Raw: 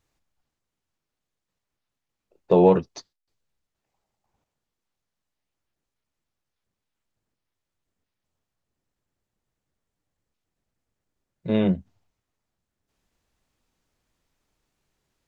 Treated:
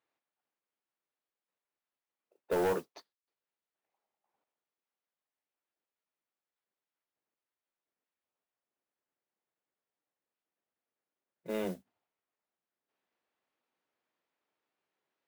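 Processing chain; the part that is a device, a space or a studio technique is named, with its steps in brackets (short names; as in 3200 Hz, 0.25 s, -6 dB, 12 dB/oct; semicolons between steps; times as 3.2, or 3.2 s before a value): carbon microphone (BPF 380–3000 Hz; soft clip -19.5 dBFS, distortion -9 dB; modulation noise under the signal 20 dB); gain -6 dB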